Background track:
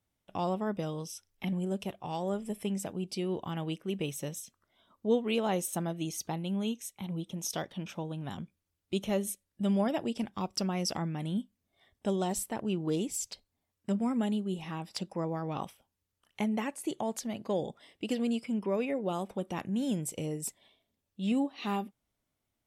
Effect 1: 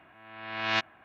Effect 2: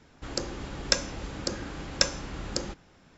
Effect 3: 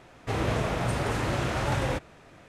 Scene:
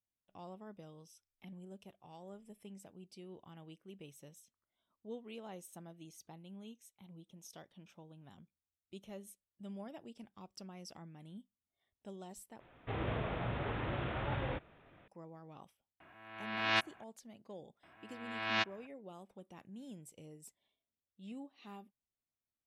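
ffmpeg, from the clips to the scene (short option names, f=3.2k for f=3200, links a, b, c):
-filter_complex "[1:a]asplit=2[a][b];[0:a]volume=-18.5dB[c];[3:a]aresample=8000,aresample=44100[d];[c]asplit=2[e][f];[e]atrim=end=12.604[g];[d]atrim=end=2.48,asetpts=PTS-STARTPTS,volume=-10dB[h];[f]atrim=start=15.076[i];[a]atrim=end=1.04,asetpts=PTS-STARTPTS,volume=-3.5dB,afade=t=in:d=0.004:c=hsin,afade=t=out:st=1.036:d=0.004:c=hsin,adelay=16000[j];[b]atrim=end=1.04,asetpts=PTS-STARTPTS,volume=-5.5dB,afade=t=in:d=0.004:c=hsin,afade=t=out:st=1.036:d=0.004:c=hsin,adelay=17830[k];[g][h]acrossfade=d=0.004:c1=hsin:c2=hsin[l];[l][i]acrossfade=d=0.004:c1=hsin:c2=hsin[m];[m][j][k]amix=inputs=3:normalize=0"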